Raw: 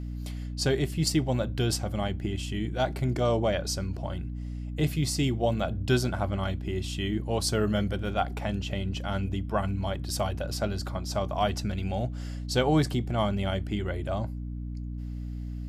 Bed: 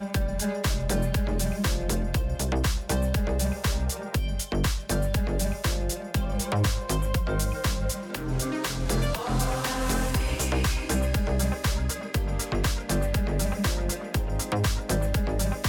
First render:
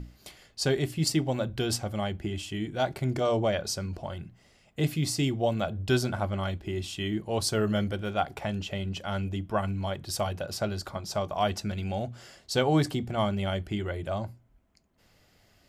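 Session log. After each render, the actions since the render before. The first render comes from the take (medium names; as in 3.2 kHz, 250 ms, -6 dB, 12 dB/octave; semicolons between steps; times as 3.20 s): hum notches 60/120/180/240/300 Hz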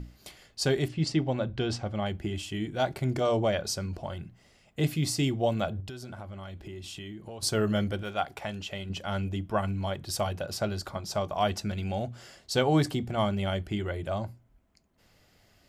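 0.88–2.06 s: distance through air 120 m; 5.80–7.43 s: compression 16:1, threshold -37 dBFS; 8.03–8.90 s: bass shelf 490 Hz -7 dB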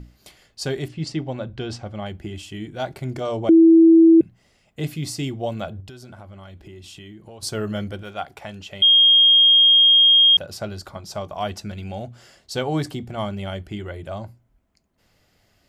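3.49–4.21 s: bleep 328 Hz -7.5 dBFS; 8.82–10.37 s: bleep 3.24 kHz -10 dBFS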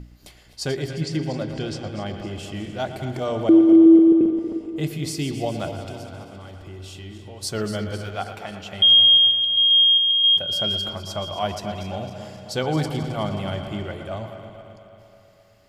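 backward echo that repeats 133 ms, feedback 74%, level -11.5 dB; feedback echo behind a low-pass 117 ms, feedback 76%, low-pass 3.7 kHz, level -11.5 dB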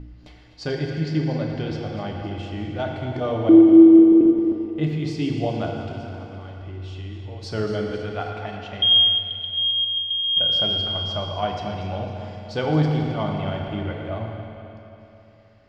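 distance through air 200 m; FDN reverb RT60 2.4 s, low-frequency decay 0.8×, high-frequency decay 0.8×, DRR 2 dB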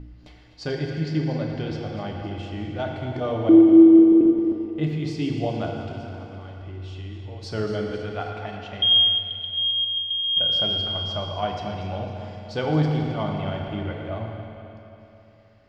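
trim -1.5 dB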